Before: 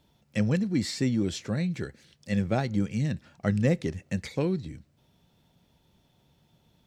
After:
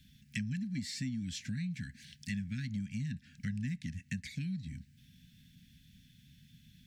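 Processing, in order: Chebyshev band-stop 260–1600 Hz, order 5; compressor 4:1, threshold -44 dBFS, peak gain reduction 18 dB; gain +6 dB

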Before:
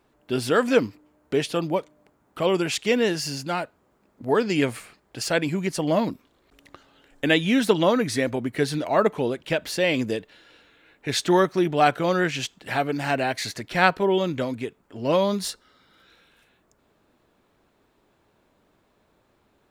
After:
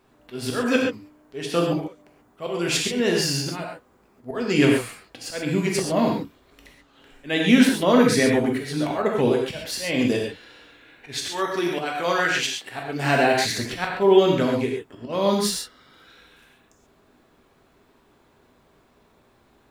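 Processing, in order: 11.29–12.69 HPF 700 Hz 6 dB/oct; auto swell 0.275 s; non-linear reverb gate 0.16 s flat, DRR -1 dB; gain +2.5 dB

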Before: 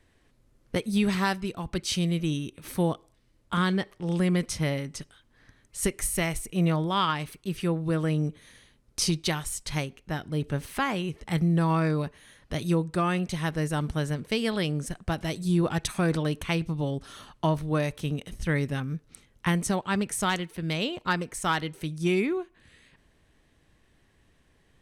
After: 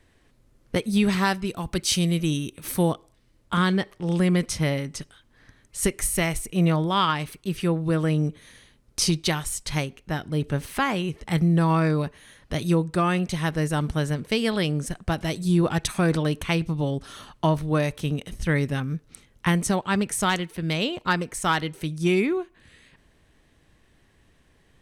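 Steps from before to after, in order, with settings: 1.49–2.92 high shelf 6700 Hz +8.5 dB; gain +3.5 dB

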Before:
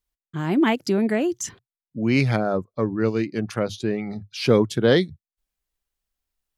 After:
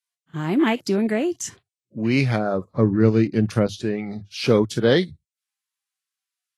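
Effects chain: 2.66–3.67 low shelf 310 Hz +10.5 dB; Vorbis 32 kbps 32000 Hz

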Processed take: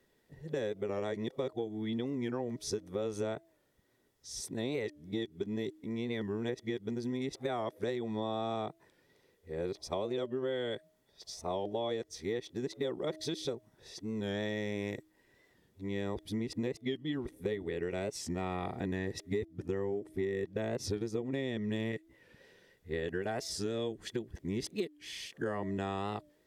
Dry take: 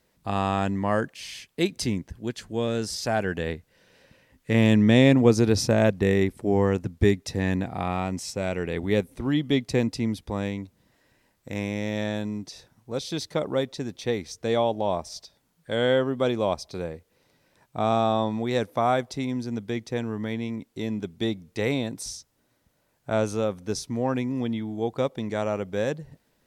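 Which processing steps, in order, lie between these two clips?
whole clip reversed; de-hum 313.5 Hz, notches 2; small resonant body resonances 390/1900/3400 Hz, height 10 dB, ringing for 30 ms; compressor 16:1, threshold -25 dBFS, peak gain reduction 18 dB; record warp 45 rpm, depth 100 cents; gain -6 dB

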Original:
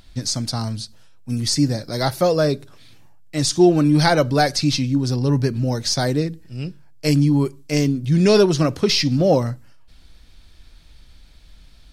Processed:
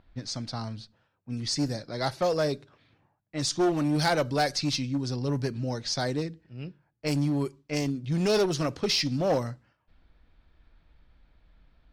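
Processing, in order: low-pass opened by the level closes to 1500 Hz, open at -13 dBFS; one-sided clip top -15 dBFS, bottom -8.5 dBFS; low shelf 310 Hz -5 dB; gain -6.5 dB

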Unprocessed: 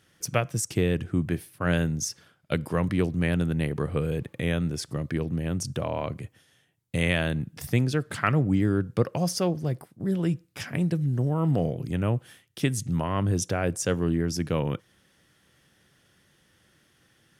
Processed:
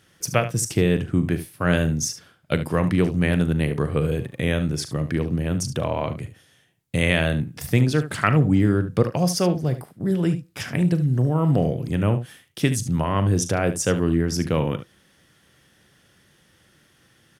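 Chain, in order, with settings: early reflections 39 ms -14 dB, 73 ms -12.5 dB; gain +4.5 dB

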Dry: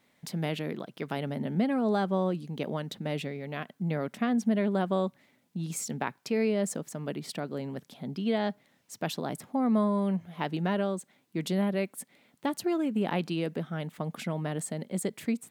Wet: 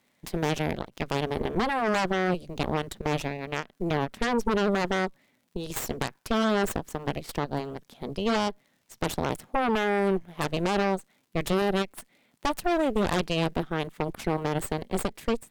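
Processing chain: added harmonics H 8 -7 dB, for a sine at -14 dBFS; crackle 110/s -51 dBFS; ending taper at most 360 dB/s; gain -2 dB

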